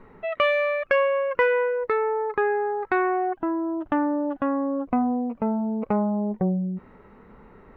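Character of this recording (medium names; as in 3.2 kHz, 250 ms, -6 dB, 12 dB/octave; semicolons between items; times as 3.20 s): noise floor -52 dBFS; spectral tilt -2.0 dB/octave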